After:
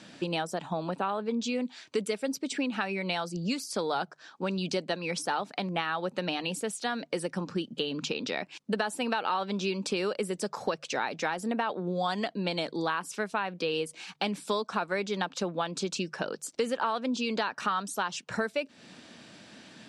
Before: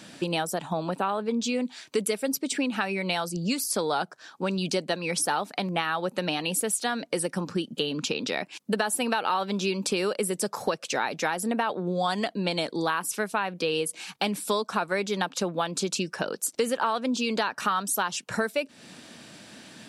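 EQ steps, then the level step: air absorption 95 m; high shelf 5700 Hz +6 dB; notches 50/100/150 Hz; -3.0 dB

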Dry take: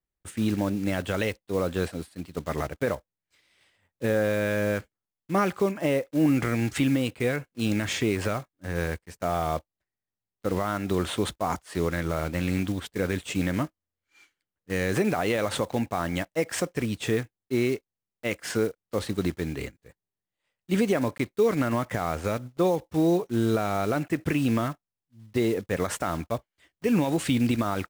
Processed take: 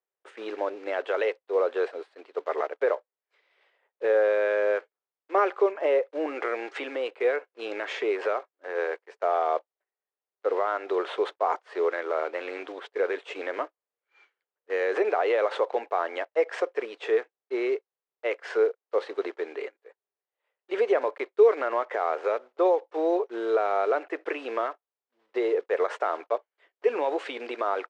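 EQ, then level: elliptic high-pass 410 Hz, stop band 60 dB; tape spacing loss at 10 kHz 36 dB; +6.5 dB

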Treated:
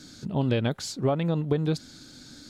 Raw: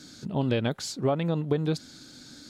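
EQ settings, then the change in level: low shelf 81 Hz +8.5 dB; 0.0 dB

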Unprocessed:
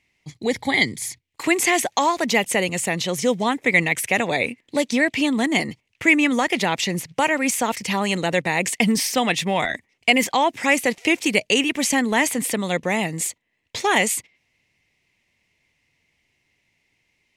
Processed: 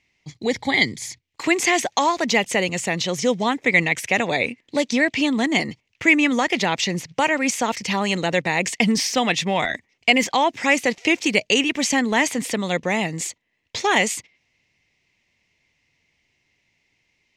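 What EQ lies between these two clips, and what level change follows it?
resonant high shelf 8000 Hz -8.5 dB, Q 1.5; 0.0 dB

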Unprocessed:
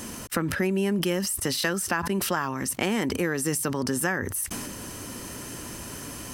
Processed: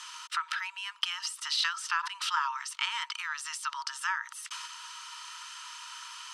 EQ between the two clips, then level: rippled Chebyshev high-pass 910 Hz, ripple 9 dB; Bessel low-pass 5800 Hz, order 4; +5.0 dB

